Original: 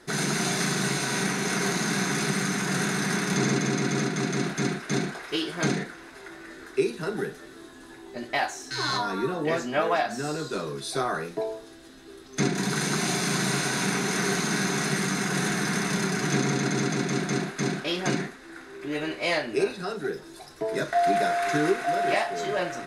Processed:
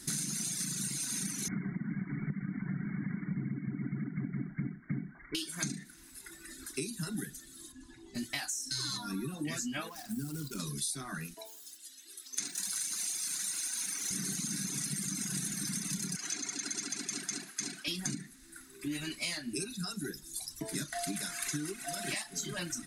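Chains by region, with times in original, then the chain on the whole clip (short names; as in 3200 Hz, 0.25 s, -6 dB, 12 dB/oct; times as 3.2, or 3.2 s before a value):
1.48–5.35 brick-wall FIR low-pass 2300 Hz + low shelf 230 Hz +8.5 dB
7.72–8.15 LPF 8000 Hz + high shelf 2200 Hz -6 dB
9.89–10.6 median filter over 15 samples + compressor 12:1, threshold -28 dBFS
11.34–14.11 HPF 630 Hz + lo-fi delay 84 ms, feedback 55%, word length 8-bit, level -12.5 dB
16.16–17.88 HPF 470 Hz + high shelf 10000 Hz -10 dB + notch 3700 Hz, Q 16
whole clip: EQ curve 280 Hz 0 dB, 460 Hz -22 dB, 3700 Hz -1 dB, 8600 Hz +12 dB; reverb removal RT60 2 s; compressor 10:1, threshold -37 dBFS; gain +4 dB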